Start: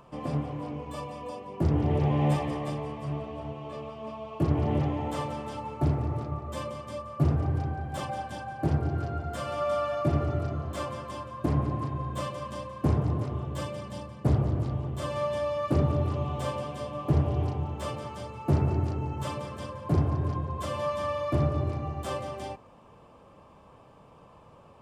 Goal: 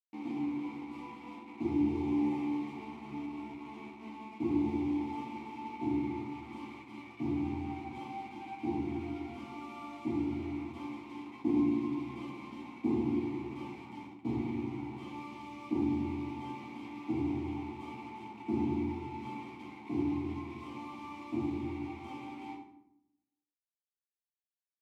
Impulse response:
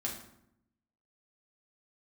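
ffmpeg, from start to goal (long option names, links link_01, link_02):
-filter_complex "[0:a]asplit=3[link_01][link_02][link_03];[link_01]afade=type=out:start_time=11.22:duration=0.02[link_04];[link_02]adynamicequalizer=threshold=0.0126:dfrequency=330:dqfactor=0.83:tfrequency=330:tqfactor=0.83:attack=5:release=100:ratio=0.375:range=2:mode=boostabove:tftype=bell,afade=type=in:start_time=11.22:duration=0.02,afade=type=out:start_time=13.67:duration=0.02[link_05];[link_03]afade=type=in:start_time=13.67:duration=0.02[link_06];[link_04][link_05][link_06]amix=inputs=3:normalize=0,acrusher=bits=5:mix=0:aa=0.000001,asplit=3[link_07][link_08][link_09];[link_07]bandpass=frequency=300:width_type=q:width=8,volume=0dB[link_10];[link_08]bandpass=frequency=870:width_type=q:width=8,volume=-6dB[link_11];[link_09]bandpass=frequency=2240:width_type=q:width=8,volume=-9dB[link_12];[link_10][link_11][link_12]amix=inputs=3:normalize=0,asplit=2[link_13][link_14];[link_14]adelay=14,volume=-11dB[link_15];[link_13][link_15]amix=inputs=2:normalize=0[link_16];[1:a]atrim=start_sample=2205[link_17];[link_16][link_17]afir=irnorm=-1:irlink=0,volume=2dB"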